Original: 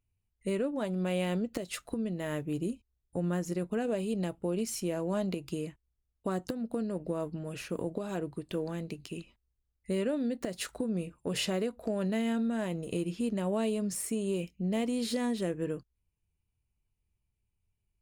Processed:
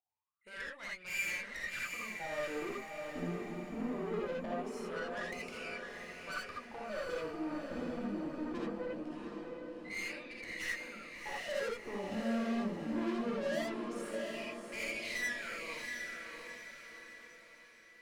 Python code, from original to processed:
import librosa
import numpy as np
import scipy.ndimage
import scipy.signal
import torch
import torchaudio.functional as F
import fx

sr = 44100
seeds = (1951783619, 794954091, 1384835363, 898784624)

p1 = fx.high_shelf(x, sr, hz=2200.0, db=10.0)
p2 = fx.level_steps(p1, sr, step_db=11)
p3 = p1 + F.gain(torch.from_numpy(p2), 0.5).numpy()
p4 = fx.wah_lfo(p3, sr, hz=0.22, low_hz=240.0, high_hz=2300.0, q=20.0)
p5 = fx.tube_stage(p4, sr, drive_db=51.0, bias=0.6)
p6 = p5 + fx.echo_diffused(p5, sr, ms=714, feedback_pct=47, wet_db=-4.0, dry=0)
p7 = fx.rev_gated(p6, sr, seeds[0], gate_ms=100, shape='rising', drr_db=-3.5)
y = F.gain(torch.from_numpy(p7), 10.5).numpy()